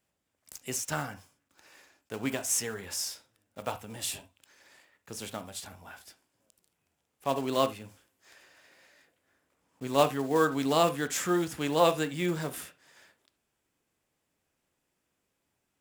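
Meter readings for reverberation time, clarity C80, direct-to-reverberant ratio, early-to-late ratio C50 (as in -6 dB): not exponential, 28.5 dB, 10.0 dB, 15.5 dB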